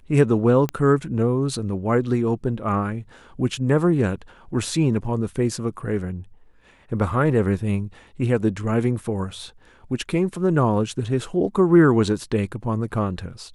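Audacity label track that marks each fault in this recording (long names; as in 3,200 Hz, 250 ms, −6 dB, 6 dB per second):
0.690000	0.690000	click −12 dBFS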